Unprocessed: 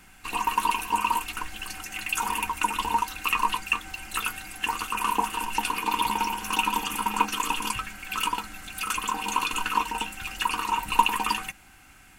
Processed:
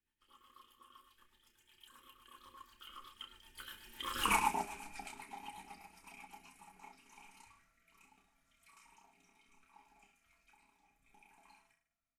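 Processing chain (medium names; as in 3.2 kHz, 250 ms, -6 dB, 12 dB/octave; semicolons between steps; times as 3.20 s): Doppler pass-by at 4.27 s, 47 m/s, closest 2.6 m; reverse bouncing-ball echo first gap 30 ms, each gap 1.15×, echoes 5; rotary cabinet horn 8 Hz, later 0.7 Hz, at 6.30 s; trim +2 dB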